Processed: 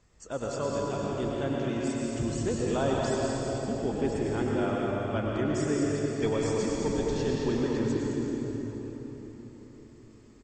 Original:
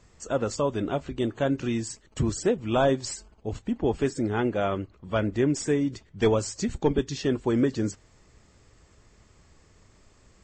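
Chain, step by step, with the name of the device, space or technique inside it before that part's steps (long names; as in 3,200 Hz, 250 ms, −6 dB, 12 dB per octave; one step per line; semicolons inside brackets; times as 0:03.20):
cave (single-tap delay 216 ms −8.5 dB; convolution reverb RT60 4.4 s, pre-delay 93 ms, DRR −3.5 dB)
level −8 dB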